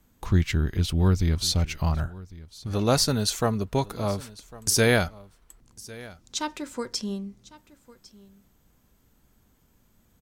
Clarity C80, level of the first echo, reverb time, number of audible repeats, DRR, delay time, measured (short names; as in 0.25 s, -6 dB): none, -20.5 dB, none, 1, none, 1.102 s